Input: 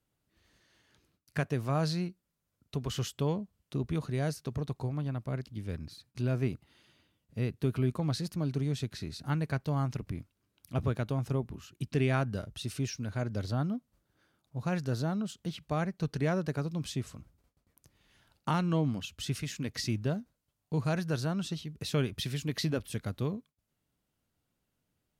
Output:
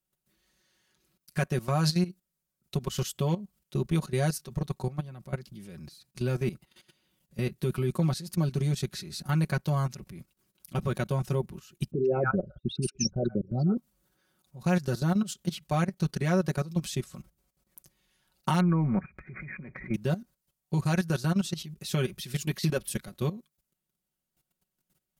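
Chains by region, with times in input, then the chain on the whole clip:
11.91–13.77 s: resonances exaggerated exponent 3 + peaking EQ 480 Hz +8.5 dB 2.1 oct + bands offset in time lows, highs 120 ms, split 1 kHz
18.60–19.94 s: brick-wall FIR low-pass 2.5 kHz + transient shaper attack -5 dB, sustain +9 dB
whole clip: level held to a coarse grid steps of 16 dB; treble shelf 5.9 kHz +11 dB; comb 5.4 ms, depth 80%; trim +4.5 dB

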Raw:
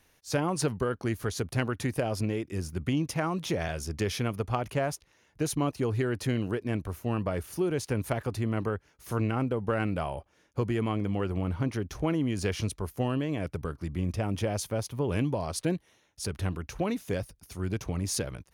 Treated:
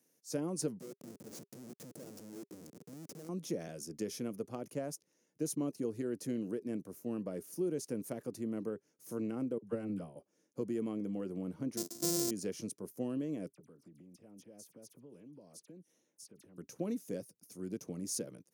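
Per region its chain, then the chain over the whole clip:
0.80–3.29 s: compression 12:1, threshold -33 dBFS + Schmitt trigger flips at -38.5 dBFS
9.58–10.16 s: peaking EQ 71 Hz +11.5 dB 2 oct + phase dispersion lows, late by 48 ms, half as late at 670 Hz + upward expansion 2.5:1, over -34 dBFS
11.77–12.31 s: sorted samples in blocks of 128 samples + resonant high shelf 3.3 kHz +10 dB, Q 1.5
13.52–16.58 s: compression 8:1, threshold -43 dBFS + phase dispersion lows, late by 48 ms, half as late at 2.8 kHz
whole clip: high-pass 180 Hz 24 dB/octave; high-order bell 1.7 kHz -13.5 dB 2.9 oct; band-stop 400 Hz, Q 12; trim -5 dB

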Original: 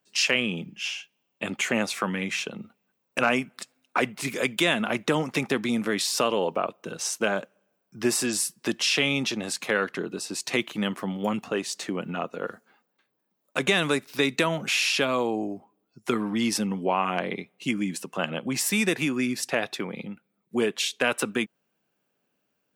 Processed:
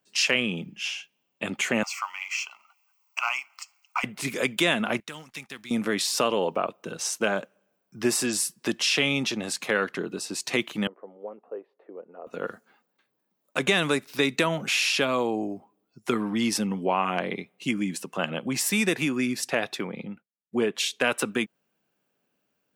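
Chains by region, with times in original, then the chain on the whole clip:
1.83–4.04 s: companding laws mixed up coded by mu + high-pass 850 Hz 24 dB/octave + static phaser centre 2.5 kHz, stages 8
5.00–5.71 s: companding laws mixed up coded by A + amplifier tone stack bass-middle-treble 5-5-5
10.87–12.27 s: ladder band-pass 540 Hz, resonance 55% + distance through air 360 m
19.88–20.75 s: treble shelf 4.2 kHz -11 dB + expander -55 dBFS
whole clip: none

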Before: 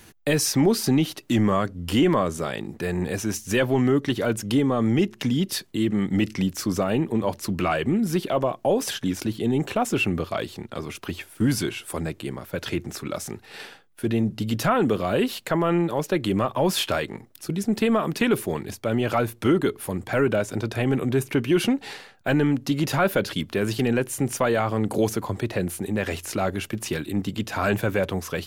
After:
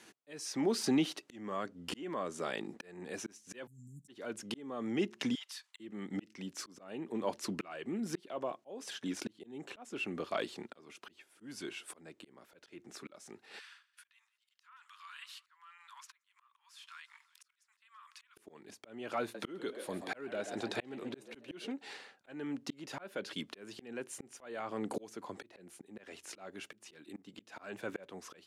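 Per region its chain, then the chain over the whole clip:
3.67–4.08 s: Chebyshev band-stop 170–7400 Hz, order 4 + treble shelf 7.7 kHz +6 dB
5.35–5.80 s: steep high-pass 890 Hz + compression 4:1, threshold -37 dBFS
13.59–18.37 s: steep high-pass 1 kHz 72 dB/octave + compression 2:1, threshold -47 dBFS + feedback delay 172 ms, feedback 53%, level -22.5 dB
19.21–21.72 s: peaking EQ 4 kHz +7 dB 0.44 oct + frequency-shifting echo 133 ms, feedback 45%, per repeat +91 Hz, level -12 dB
whole clip: Chebyshev band-pass 270–8300 Hz, order 2; peaking EQ 1.8 kHz +2.5 dB 2.4 oct; slow attack 633 ms; trim -7.5 dB

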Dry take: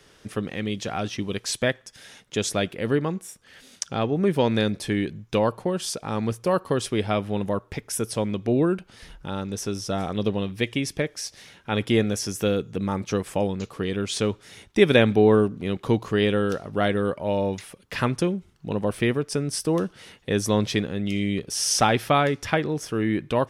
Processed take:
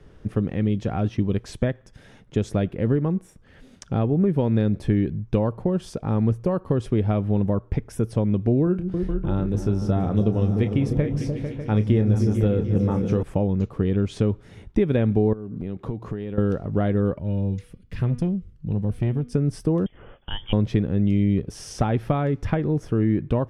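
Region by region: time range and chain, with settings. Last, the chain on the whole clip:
8.64–13.23 s: doubling 28 ms -10 dB + delay with an opening low-pass 149 ms, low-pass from 200 Hz, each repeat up 2 oct, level -6 dB
15.33–16.38 s: high-pass 110 Hz 6 dB/octave + band-stop 3 kHz, Q 28 + compression, threshold -33 dBFS
17.19–19.34 s: peaking EQ 740 Hz -15 dB 2.3 oct + de-hum 243.2 Hz, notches 22 + transformer saturation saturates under 600 Hz
19.86–20.53 s: peaking EQ 120 Hz -14.5 dB 0.65 oct + frequency inversion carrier 3.4 kHz
whole clip: peaking EQ 4.7 kHz -3 dB 1.4 oct; compression 3:1, threshold -24 dBFS; tilt EQ -4 dB/octave; trim -1.5 dB

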